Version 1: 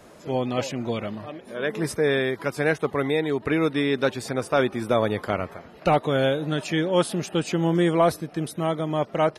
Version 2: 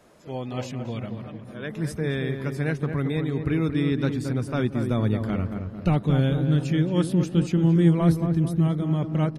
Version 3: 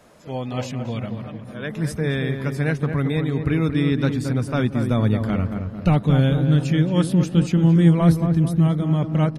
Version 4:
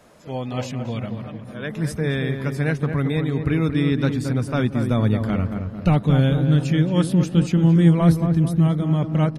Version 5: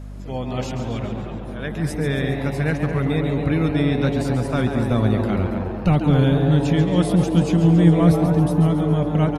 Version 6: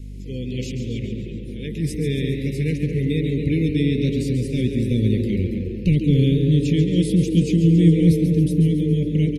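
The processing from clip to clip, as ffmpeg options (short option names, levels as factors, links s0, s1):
-filter_complex "[0:a]bandreject=f=50:t=h:w=6,bandreject=f=100:t=h:w=6,asubboost=boost=8.5:cutoff=210,asplit=2[s0][s1];[s1]adelay=224,lowpass=f=1400:p=1,volume=0.501,asplit=2[s2][s3];[s3]adelay=224,lowpass=f=1400:p=1,volume=0.53,asplit=2[s4][s5];[s5]adelay=224,lowpass=f=1400:p=1,volume=0.53,asplit=2[s6][s7];[s7]adelay=224,lowpass=f=1400:p=1,volume=0.53,asplit=2[s8][s9];[s9]adelay=224,lowpass=f=1400:p=1,volume=0.53,asplit=2[s10][s11];[s11]adelay=224,lowpass=f=1400:p=1,volume=0.53,asplit=2[s12][s13];[s13]adelay=224,lowpass=f=1400:p=1,volume=0.53[s14];[s0][s2][s4][s6][s8][s10][s12][s14]amix=inputs=8:normalize=0,volume=0.447"
-af "equalizer=f=360:w=4.2:g=-5.5,volume=1.68"
-af anull
-filter_complex "[0:a]aeval=exprs='val(0)+0.0224*(sin(2*PI*50*n/s)+sin(2*PI*2*50*n/s)/2+sin(2*PI*3*50*n/s)/3+sin(2*PI*4*50*n/s)/4+sin(2*PI*5*50*n/s)/5)':c=same,asplit=8[s0][s1][s2][s3][s4][s5][s6][s7];[s1]adelay=138,afreqshift=140,volume=0.355[s8];[s2]adelay=276,afreqshift=280,volume=0.2[s9];[s3]adelay=414,afreqshift=420,volume=0.111[s10];[s4]adelay=552,afreqshift=560,volume=0.0624[s11];[s5]adelay=690,afreqshift=700,volume=0.0351[s12];[s6]adelay=828,afreqshift=840,volume=0.0195[s13];[s7]adelay=966,afreqshift=980,volume=0.011[s14];[s0][s8][s9][s10][s11][s12][s13][s14]amix=inputs=8:normalize=0"
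-af "asuperstop=centerf=1000:order=12:qfactor=0.63"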